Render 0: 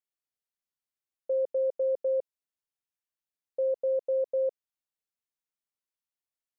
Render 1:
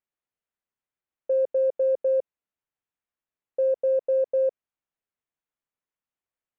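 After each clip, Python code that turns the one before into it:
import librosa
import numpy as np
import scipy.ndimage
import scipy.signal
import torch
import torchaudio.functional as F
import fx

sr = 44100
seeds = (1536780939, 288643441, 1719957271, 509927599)

y = fx.wiener(x, sr, points=9)
y = y * 10.0 ** (5.0 / 20.0)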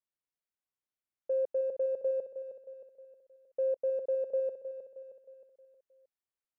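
y = fx.echo_feedback(x, sr, ms=313, feedback_pct=48, wet_db=-10)
y = y * 10.0 ** (-7.5 / 20.0)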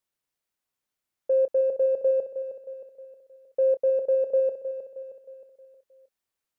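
y = fx.doubler(x, sr, ms=28.0, db=-14.0)
y = y * 10.0 ** (8.0 / 20.0)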